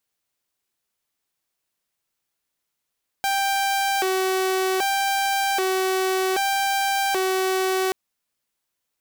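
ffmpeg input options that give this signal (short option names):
-f lavfi -i "aevalsrc='0.133*(2*mod((582*t+205/0.64*(0.5-abs(mod(0.64*t,1)-0.5))),1)-1)':d=4.68:s=44100"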